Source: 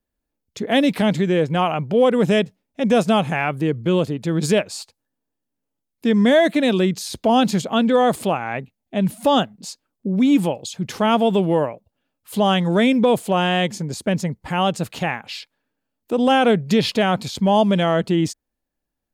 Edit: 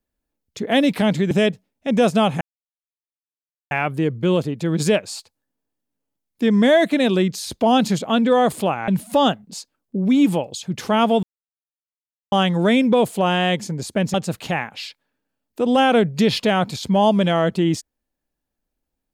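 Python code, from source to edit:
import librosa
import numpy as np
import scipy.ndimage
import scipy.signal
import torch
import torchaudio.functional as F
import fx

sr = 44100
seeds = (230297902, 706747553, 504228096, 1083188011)

y = fx.edit(x, sr, fx.cut(start_s=1.31, length_s=0.93),
    fx.insert_silence(at_s=3.34, length_s=1.3),
    fx.cut(start_s=8.51, length_s=0.48),
    fx.silence(start_s=11.34, length_s=1.09),
    fx.cut(start_s=14.25, length_s=0.41), tone=tone)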